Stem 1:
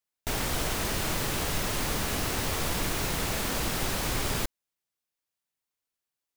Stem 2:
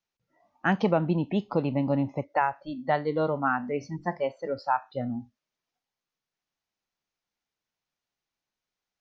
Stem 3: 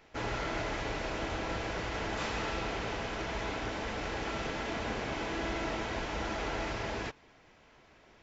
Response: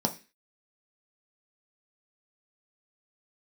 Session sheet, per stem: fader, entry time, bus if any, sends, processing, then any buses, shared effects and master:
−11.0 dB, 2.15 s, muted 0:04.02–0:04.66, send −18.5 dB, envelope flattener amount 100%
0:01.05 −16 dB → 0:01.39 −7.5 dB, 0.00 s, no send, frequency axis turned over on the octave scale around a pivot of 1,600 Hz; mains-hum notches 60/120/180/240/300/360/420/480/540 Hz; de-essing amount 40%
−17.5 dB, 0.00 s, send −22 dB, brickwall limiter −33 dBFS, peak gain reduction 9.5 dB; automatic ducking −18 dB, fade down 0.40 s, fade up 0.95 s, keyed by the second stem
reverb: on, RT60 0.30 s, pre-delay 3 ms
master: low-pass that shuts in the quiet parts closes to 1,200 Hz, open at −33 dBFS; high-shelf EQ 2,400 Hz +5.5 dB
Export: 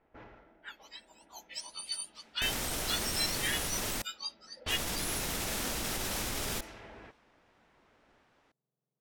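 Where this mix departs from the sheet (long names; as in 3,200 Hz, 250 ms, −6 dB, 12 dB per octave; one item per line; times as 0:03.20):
stem 3 −17.5 dB → −9.5 dB
reverb return −8.0 dB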